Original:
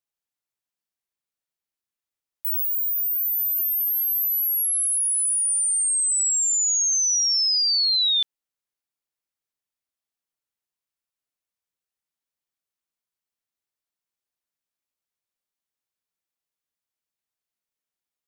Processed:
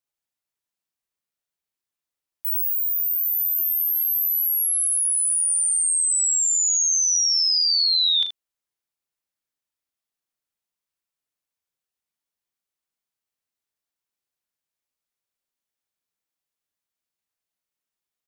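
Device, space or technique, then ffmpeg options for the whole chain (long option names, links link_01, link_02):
slapback doubling: -filter_complex "[0:a]asplit=3[link_01][link_02][link_03];[link_02]adelay=37,volume=-8dB[link_04];[link_03]adelay=78,volume=-10dB[link_05];[link_01][link_04][link_05]amix=inputs=3:normalize=0"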